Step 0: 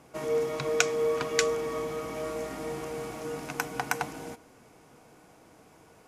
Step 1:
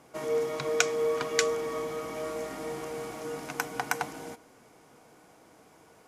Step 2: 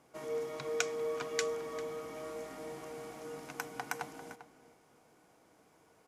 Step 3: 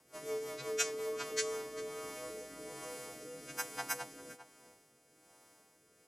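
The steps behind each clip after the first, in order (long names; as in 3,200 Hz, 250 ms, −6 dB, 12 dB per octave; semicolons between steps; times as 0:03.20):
low-shelf EQ 150 Hz −7.5 dB; notch filter 2,600 Hz, Q 21
slap from a distant wall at 68 metres, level −13 dB; level −8.5 dB
every partial snapped to a pitch grid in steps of 2 semitones; rotating-speaker cabinet horn 5.5 Hz, later 1.2 Hz, at 0:00.95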